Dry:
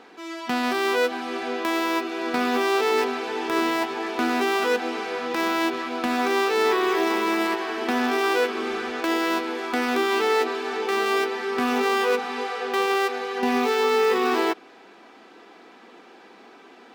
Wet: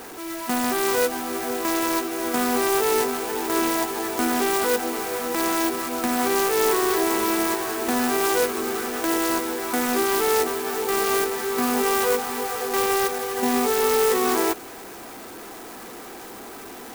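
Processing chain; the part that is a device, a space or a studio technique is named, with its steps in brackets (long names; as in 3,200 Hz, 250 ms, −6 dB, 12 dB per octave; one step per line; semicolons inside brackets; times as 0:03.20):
early CD player with a faulty converter (converter with a step at zero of −35.5 dBFS; converter with an unsteady clock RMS 0.079 ms)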